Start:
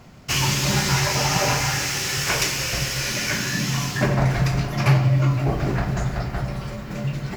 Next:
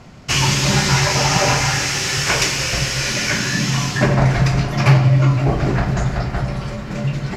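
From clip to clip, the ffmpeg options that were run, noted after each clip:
ffmpeg -i in.wav -af "lowpass=8800,volume=5dB" out.wav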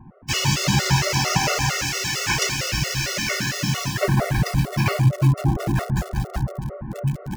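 ffmpeg -i in.wav -filter_complex "[0:a]acrossover=split=1400[link_01][link_02];[link_02]acrusher=bits=4:mix=0:aa=0.000001[link_03];[link_01][link_03]amix=inputs=2:normalize=0,afftfilt=real='re*gt(sin(2*PI*4.4*pts/sr)*(1-2*mod(floor(b*sr/1024/370),2)),0)':imag='im*gt(sin(2*PI*4.4*pts/sr)*(1-2*mod(floor(b*sr/1024/370),2)),0)':win_size=1024:overlap=0.75,volume=-1.5dB" out.wav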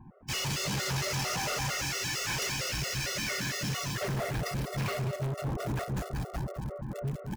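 ffmpeg -i in.wav -af "volume=23.5dB,asoftclip=hard,volume=-23.5dB,aecho=1:1:206:0.266,volume=-6.5dB" out.wav

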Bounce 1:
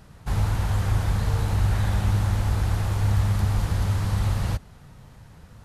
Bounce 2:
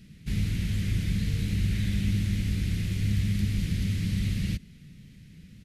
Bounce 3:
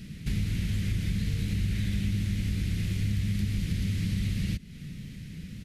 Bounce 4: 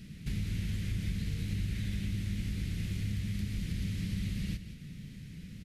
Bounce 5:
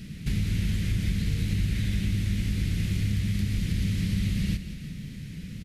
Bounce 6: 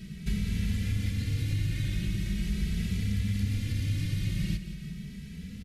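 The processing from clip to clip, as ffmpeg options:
ffmpeg -i in.wav -af "firequalizer=gain_entry='entry(110,0);entry(180,11);entry(540,-11);entry(850,-25);entry(2100,7);entry(7500,1)':delay=0.05:min_phase=1,volume=-5.5dB" out.wav
ffmpeg -i in.wav -af "acompressor=threshold=-39dB:ratio=2.5,volume=8.5dB" out.wav
ffmpeg -i in.wav -af "aecho=1:1:175:0.282,volume=-5.5dB" out.wav
ffmpeg -i in.wav -af "aecho=1:1:349:0.168,volume=7.5dB" out.wav
ffmpeg -i in.wav -filter_complex "[0:a]asplit=2[link_01][link_02];[link_02]adelay=2.7,afreqshift=0.41[link_03];[link_01][link_03]amix=inputs=2:normalize=1" out.wav

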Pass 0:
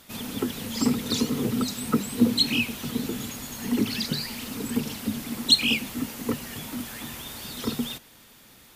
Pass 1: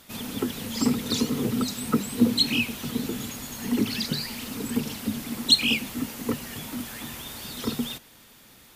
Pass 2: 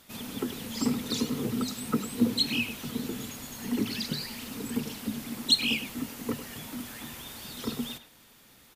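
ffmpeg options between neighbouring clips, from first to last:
ffmpeg -i in.wav -af anull out.wav
ffmpeg -i in.wav -filter_complex "[0:a]bandreject=frequency=50:width_type=h:width=6,bandreject=frequency=100:width_type=h:width=6,asplit=2[link_01][link_02];[link_02]adelay=100,highpass=300,lowpass=3400,asoftclip=type=hard:threshold=-15dB,volume=-11dB[link_03];[link_01][link_03]amix=inputs=2:normalize=0,volume=-4.5dB" out.wav

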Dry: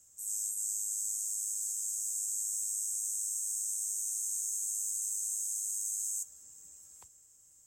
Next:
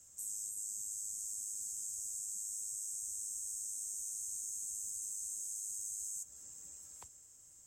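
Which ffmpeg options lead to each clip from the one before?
ffmpeg -i in.wav -filter_complex "[0:a]highshelf=frequency=10000:gain=-7.5,acrossover=split=410[link_01][link_02];[link_02]acompressor=threshold=-44dB:ratio=5[link_03];[link_01][link_03]amix=inputs=2:normalize=0,volume=4dB" out.wav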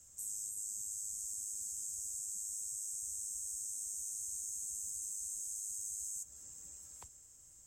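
ffmpeg -i in.wav -af "lowshelf=frequency=81:gain=9" out.wav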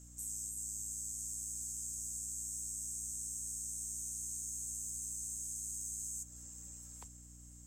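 ffmpeg -i in.wav -filter_complex "[0:a]asplit=2[link_01][link_02];[link_02]asoftclip=type=tanh:threshold=-40dB,volume=-7dB[link_03];[link_01][link_03]amix=inputs=2:normalize=0,aeval=exprs='val(0)+0.00224*(sin(2*PI*60*n/s)+sin(2*PI*2*60*n/s)/2+sin(2*PI*3*60*n/s)/3+sin(2*PI*4*60*n/s)/4+sin(2*PI*5*60*n/s)/5)':channel_layout=same,volume=-2.5dB" out.wav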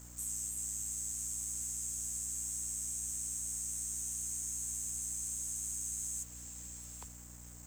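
ffmpeg -i in.wav -af "acrusher=bits=8:mix=0:aa=0.5,volume=3dB" out.wav

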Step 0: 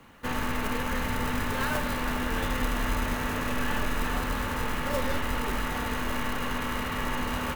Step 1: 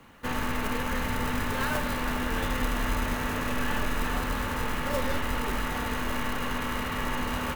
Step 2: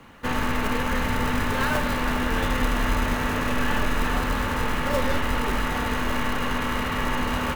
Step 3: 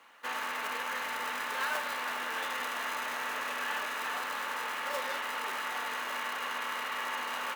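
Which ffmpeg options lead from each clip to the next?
ffmpeg -i in.wav -af anull out.wav
ffmpeg -i in.wav -af "highshelf=frequency=8500:gain=-6,volume=5dB" out.wav
ffmpeg -i in.wav -af "highpass=750,volume=-6dB" out.wav

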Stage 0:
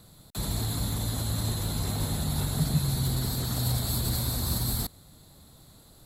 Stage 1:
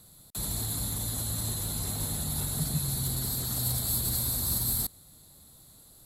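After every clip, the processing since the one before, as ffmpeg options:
ffmpeg -i in.wav -af "equalizer=frequency=11000:width_type=o:width=1.5:gain=11,volume=-5.5dB" out.wav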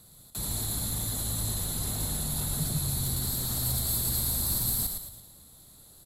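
ffmpeg -i in.wav -filter_complex "[0:a]asoftclip=type=tanh:threshold=-18dB,asplit=2[link_01][link_02];[link_02]asplit=5[link_03][link_04][link_05][link_06][link_07];[link_03]adelay=111,afreqshift=-53,volume=-5.5dB[link_08];[link_04]adelay=222,afreqshift=-106,volume=-12.4dB[link_09];[link_05]adelay=333,afreqshift=-159,volume=-19.4dB[link_10];[link_06]adelay=444,afreqshift=-212,volume=-26.3dB[link_11];[link_07]adelay=555,afreqshift=-265,volume=-33.2dB[link_12];[link_08][link_09][link_10][link_11][link_12]amix=inputs=5:normalize=0[link_13];[link_01][link_13]amix=inputs=2:normalize=0" out.wav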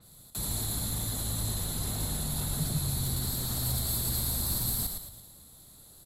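ffmpeg -i in.wav -af "adynamicequalizer=threshold=0.00447:dfrequency=5300:dqfactor=0.7:tfrequency=5300:tqfactor=0.7:attack=5:release=100:ratio=0.375:range=1.5:mode=cutabove:tftype=highshelf" out.wav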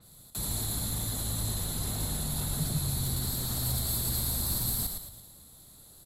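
ffmpeg -i in.wav -af anull out.wav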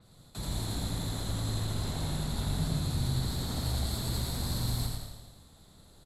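ffmpeg -i in.wav -af "aecho=1:1:84|168|252|336|420|504|588:0.631|0.347|0.191|0.105|0.0577|0.0318|0.0175,adynamicsmooth=sensitivity=1.5:basefreq=5300" out.wav

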